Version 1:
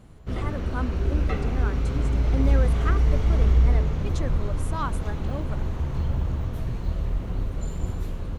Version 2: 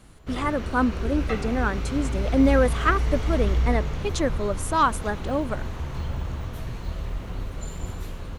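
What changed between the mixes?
speech +10.5 dB
background: add tilt shelving filter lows −4.5 dB, about 710 Hz

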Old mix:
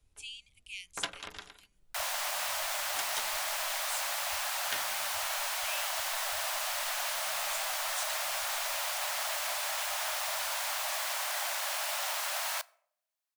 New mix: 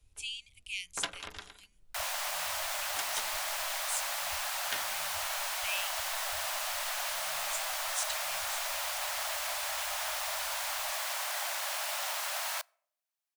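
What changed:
speech +5.0 dB
second sound: send −7.5 dB

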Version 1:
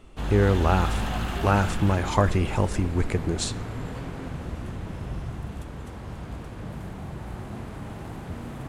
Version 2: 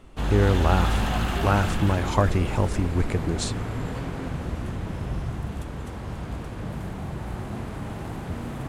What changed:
background +3.5 dB
reverb: off

